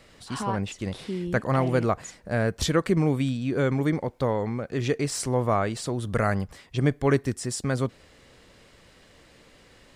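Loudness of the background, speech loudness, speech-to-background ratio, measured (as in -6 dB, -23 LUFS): -35.5 LUFS, -26.5 LUFS, 9.0 dB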